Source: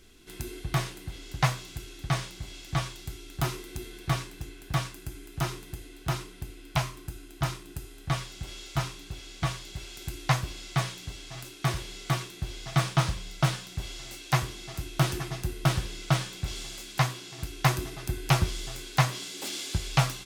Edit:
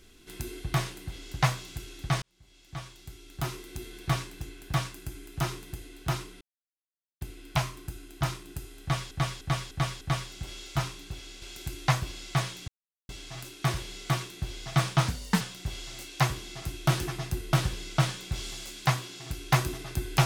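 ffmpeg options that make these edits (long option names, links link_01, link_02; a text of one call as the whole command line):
ffmpeg -i in.wav -filter_complex "[0:a]asplit=11[link_01][link_02][link_03][link_04][link_05][link_06][link_07][link_08][link_09][link_10][link_11];[link_01]atrim=end=2.22,asetpts=PTS-STARTPTS,afade=type=out:start_time=2.216:duration=0.004:curve=hsin[link_12];[link_02]atrim=start=2.22:end=6.41,asetpts=PTS-STARTPTS,afade=type=in:duration=1.85,afade=type=out:start_time=4.186:duration=0.004:curve=hsin,apad=pad_dur=0.8[link_13];[link_03]atrim=start=6.41:end=8.312,asetpts=PTS-STARTPTS,afade=type=in:duration=0.004:curve=hsin[link_14];[link_04]atrim=start=8.008:end=8.312[link_15];[link_05]atrim=start=8.008:end=8.312[link_16];[link_06]atrim=start=8.008:end=8.312[link_17];[link_07]atrim=start=8.008:end=9.422[link_18];[link_08]atrim=start=9.828:end=11.09,asetpts=PTS-STARTPTS,afade=type=out:start_time=1.258:duration=0.004:curve=hsin,apad=pad_dur=0.41[link_19];[link_09]atrim=start=11.09:end=13.084,asetpts=PTS-STARTPTS,afade=type=in:duration=0.004:curve=hsin[link_20];[link_10]atrim=start=13.08:end=13.53,asetpts=PTS-STARTPTS,asetrate=60417,aresample=44100,atrim=end_sample=14485,asetpts=PTS-STARTPTS[link_21];[link_11]atrim=start=13.526[link_22];[link_12][link_13][link_14]concat=n=3:v=0:a=1[link_23];[link_23][link_15]acrossfade=duration=0.004:curve1=hsin:curve2=hsin[link_24];[link_24][link_16]acrossfade=duration=0.004:curve1=hsin:curve2=hsin[link_25];[link_25][link_17]acrossfade=duration=0.004:curve1=hsin:curve2=hsin[link_26];[link_26][link_18]acrossfade=duration=0.004:curve1=hsin:curve2=hsin[link_27];[link_19][link_20]concat=n=2:v=0:a=1[link_28];[link_27][link_28]acrossfade=duration=0.004:curve1=hsin:curve2=hsin[link_29];[link_29][link_21]acrossfade=duration=0.004:curve1=hsin:curve2=hsin[link_30];[link_30][link_22]acrossfade=duration=0.004:curve1=hsin:curve2=hsin" out.wav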